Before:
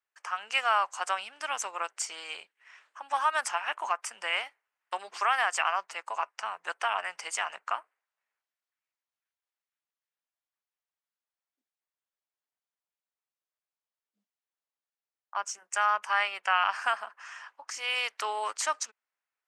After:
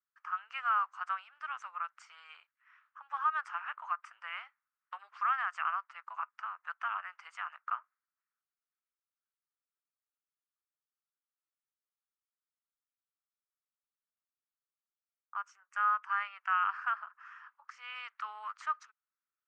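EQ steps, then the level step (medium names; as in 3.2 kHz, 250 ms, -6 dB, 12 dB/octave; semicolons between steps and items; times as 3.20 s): ladder band-pass 1.4 kHz, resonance 65%; 0.0 dB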